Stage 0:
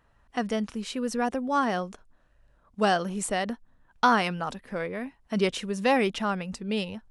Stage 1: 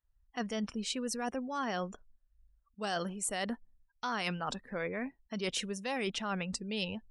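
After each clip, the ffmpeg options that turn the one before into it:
-af "afftdn=nr=29:nf=-48,highshelf=f=3100:g=11.5,areverse,acompressor=threshold=0.0355:ratio=16,areverse,volume=0.75"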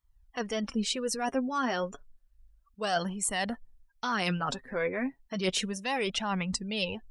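-af "flanger=delay=0.9:depth=7:regen=28:speed=0.31:shape=sinusoidal,volume=2.66"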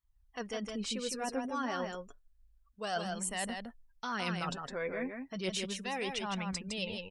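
-af "aecho=1:1:160:0.562,volume=0.473"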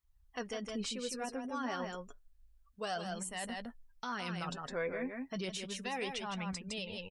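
-filter_complex "[0:a]alimiter=level_in=2.11:limit=0.0631:level=0:latency=1:release=361,volume=0.473,asplit=2[s0][s1];[s1]adelay=12,volume=0.224[s2];[s0][s2]amix=inputs=2:normalize=0,volume=1.19"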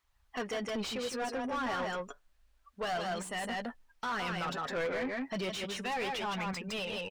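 -filter_complex "[0:a]asplit=2[s0][s1];[s1]highpass=f=720:p=1,volume=12.6,asoftclip=type=tanh:threshold=0.0447[s2];[s0][s2]amix=inputs=2:normalize=0,lowpass=f=2300:p=1,volume=0.501"

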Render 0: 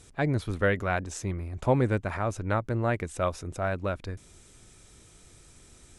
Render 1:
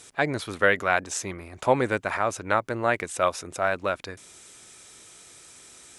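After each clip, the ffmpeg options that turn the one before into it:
-af "highpass=f=770:p=1,volume=2.66"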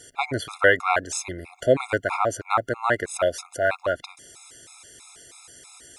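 -af "equalizer=f=200:t=o:w=0.25:g=-11.5,afftfilt=real='re*gt(sin(2*PI*3.1*pts/sr)*(1-2*mod(floor(b*sr/1024/690),2)),0)':imag='im*gt(sin(2*PI*3.1*pts/sr)*(1-2*mod(floor(b*sr/1024/690),2)),0)':win_size=1024:overlap=0.75,volume=1.68"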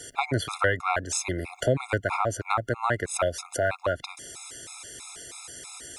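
-filter_complex "[0:a]acrossover=split=160[s0][s1];[s1]acompressor=threshold=0.0282:ratio=3[s2];[s0][s2]amix=inputs=2:normalize=0,volume=1.88"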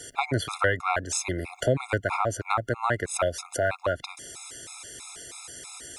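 -af anull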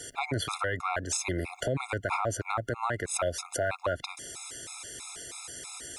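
-af "alimiter=limit=0.112:level=0:latency=1:release=54"

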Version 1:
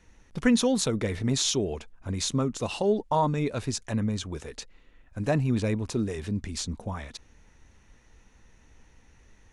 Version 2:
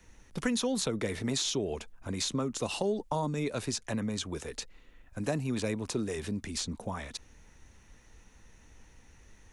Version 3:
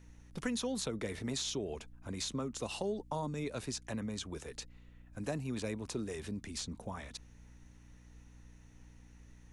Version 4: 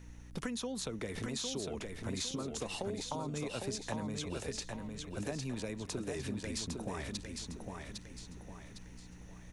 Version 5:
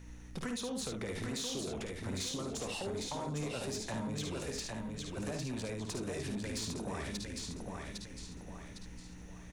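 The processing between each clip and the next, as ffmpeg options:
-filter_complex "[0:a]acrossover=split=170|450|4700[s0][s1][s2][s3];[s0]acompressor=threshold=0.00708:ratio=4[s4];[s1]acompressor=threshold=0.0224:ratio=4[s5];[s2]acompressor=threshold=0.02:ratio=4[s6];[s3]acompressor=threshold=0.00794:ratio=4[s7];[s4][s5][s6][s7]amix=inputs=4:normalize=0,highshelf=f=8300:g=9"
-af "aeval=exprs='val(0)+0.00316*(sin(2*PI*60*n/s)+sin(2*PI*2*60*n/s)/2+sin(2*PI*3*60*n/s)/3+sin(2*PI*4*60*n/s)/4+sin(2*PI*5*60*n/s)/5)':c=same,volume=0.501"
-filter_complex "[0:a]acompressor=threshold=0.00891:ratio=6,asplit=2[s0][s1];[s1]aecho=0:1:806|1612|2418|3224|4030:0.596|0.238|0.0953|0.0381|0.0152[s2];[s0][s2]amix=inputs=2:normalize=0,volume=1.78"
-af "aecho=1:1:54|73:0.447|0.447,asoftclip=type=tanh:threshold=0.0237,volume=1.12"

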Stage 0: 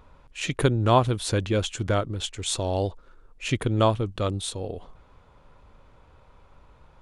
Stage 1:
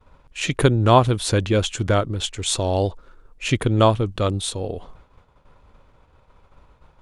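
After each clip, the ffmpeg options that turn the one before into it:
-af "agate=range=0.0224:threshold=0.00447:ratio=3:detection=peak,volume=1.78"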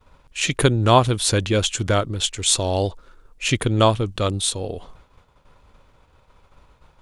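-af "highshelf=f=2600:g=7.5,volume=0.891"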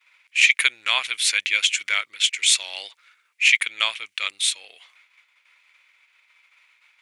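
-af "highpass=f=2200:t=q:w=6,volume=0.891"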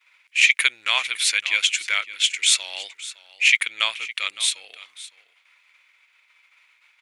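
-af "aecho=1:1:561:0.141"

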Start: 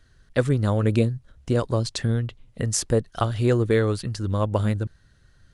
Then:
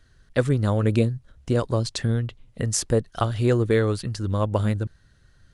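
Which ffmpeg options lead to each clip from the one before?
-af anull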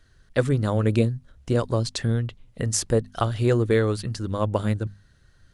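-af "bandreject=f=50:t=h:w=6,bandreject=f=100:t=h:w=6,bandreject=f=150:t=h:w=6,bandreject=f=200:t=h:w=6,bandreject=f=250:t=h:w=6"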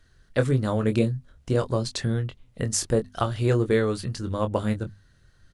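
-filter_complex "[0:a]asplit=2[s0][s1];[s1]adelay=23,volume=0.398[s2];[s0][s2]amix=inputs=2:normalize=0,volume=0.841"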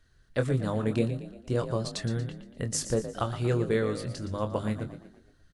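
-filter_complex "[0:a]asplit=6[s0][s1][s2][s3][s4][s5];[s1]adelay=117,afreqshift=40,volume=0.266[s6];[s2]adelay=234,afreqshift=80,volume=0.12[s7];[s3]adelay=351,afreqshift=120,volume=0.0537[s8];[s4]adelay=468,afreqshift=160,volume=0.0243[s9];[s5]adelay=585,afreqshift=200,volume=0.011[s10];[s0][s6][s7][s8][s9][s10]amix=inputs=6:normalize=0,volume=0.562"

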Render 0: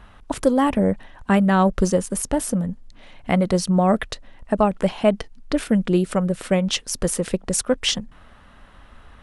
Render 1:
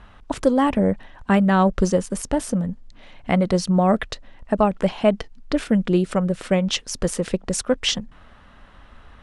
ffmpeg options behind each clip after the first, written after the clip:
-af "lowpass=7600"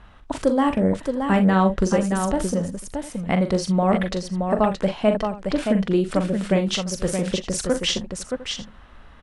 -af "aecho=1:1:42|61|623|704:0.398|0.126|0.531|0.119,volume=0.794"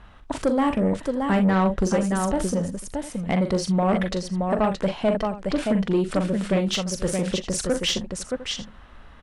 -af "asoftclip=type=tanh:threshold=0.211"

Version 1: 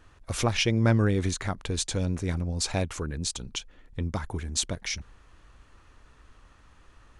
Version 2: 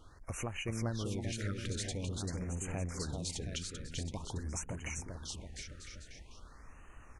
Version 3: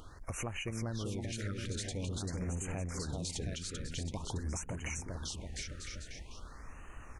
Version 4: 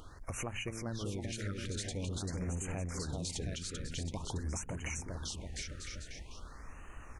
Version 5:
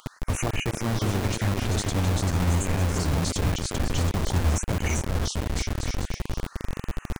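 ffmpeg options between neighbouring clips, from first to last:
-filter_complex "[0:a]acompressor=threshold=0.0112:ratio=3,asplit=2[s0][s1];[s1]aecho=0:1:390|721.5|1003|1243|1446:0.631|0.398|0.251|0.158|0.1[s2];[s0][s2]amix=inputs=2:normalize=0,afftfilt=real='re*(1-between(b*sr/1024,830*pow(4400/830,0.5+0.5*sin(2*PI*0.47*pts/sr))/1.41,830*pow(4400/830,0.5+0.5*sin(2*PI*0.47*pts/sr))*1.41))':imag='im*(1-between(b*sr/1024,830*pow(4400/830,0.5+0.5*sin(2*PI*0.47*pts/sr))/1.41,830*pow(4400/830,0.5+0.5*sin(2*PI*0.47*pts/sr))*1.41))':win_size=1024:overlap=0.75,volume=0.891"
-af "alimiter=level_in=2.99:limit=0.0631:level=0:latency=1:release=235,volume=0.335,acompressor=mode=upward:threshold=0.00126:ratio=2.5,volume=1.78"
-af "bandreject=f=111.8:t=h:w=4,bandreject=f=223.6:t=h:w=4"
-filter_complex "[0:a]lowshelf=f=150:g=9,acrossover=split=380|980[s0][s1][s2];[s0]acrusher=bits=5:mix=0:aa=0.000001[s3];[s1]aeval=exprs='sgn(val(0))*max(abs(val(0))-0.00106,0)':c=same[s4];[s3][s4][s2]amix=inputs=3:normalize=0,volume=2.66"

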